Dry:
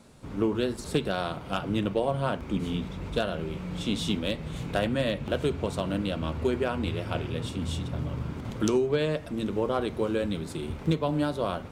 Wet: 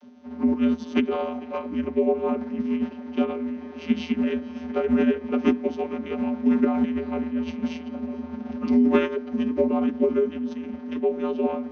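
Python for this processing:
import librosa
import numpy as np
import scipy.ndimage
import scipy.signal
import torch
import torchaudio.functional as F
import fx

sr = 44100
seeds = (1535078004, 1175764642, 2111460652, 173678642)

y = fx.vocoder(x, sr, bands=32, carrier='square', carrier_hz=82.1)
y = fx.formant_shift(y, sr, semitones=-4)
y = y + 10.0 ** (-22.5 / 20.0) * np.pad(y, (int(446 * sr / 1000.0), 0))[:len(y)]
y = F.gain(torch.from_numpy(y), 6.5).numpy()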